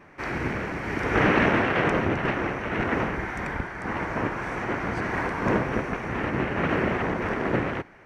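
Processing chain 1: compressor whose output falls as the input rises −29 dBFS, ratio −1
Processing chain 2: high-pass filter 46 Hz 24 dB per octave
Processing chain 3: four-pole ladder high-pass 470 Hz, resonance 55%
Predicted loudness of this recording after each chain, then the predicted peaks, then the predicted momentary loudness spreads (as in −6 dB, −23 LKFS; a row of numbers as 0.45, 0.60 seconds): −29.0, −26.0, −35.0 LKFS; −13.5, −7.5, −15.5 dBFS; 4, 9, 10 LU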